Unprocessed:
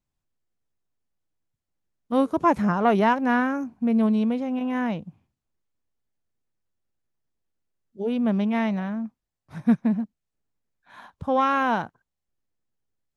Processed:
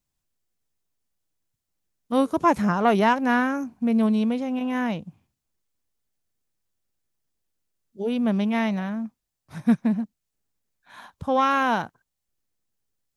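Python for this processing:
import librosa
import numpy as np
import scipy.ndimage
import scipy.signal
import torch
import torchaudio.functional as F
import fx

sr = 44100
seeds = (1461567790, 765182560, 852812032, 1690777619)

y = fx.high_shelf(x, sr, hz=3500.0, db=9.0)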